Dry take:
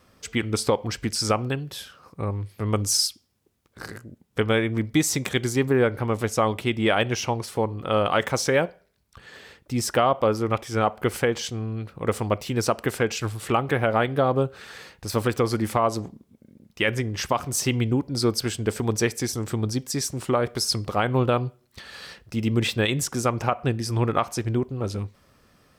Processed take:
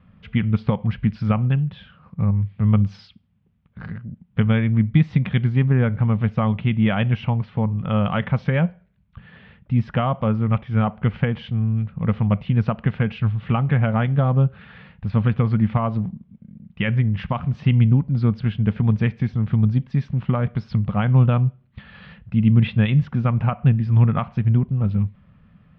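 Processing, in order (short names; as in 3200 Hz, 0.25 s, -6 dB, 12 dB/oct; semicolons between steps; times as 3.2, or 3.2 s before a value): steep low-pass 3200 Hz 36 dB/oct; resonant low shelf 250 Hz +10 dB, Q 3; gain -2.5 dB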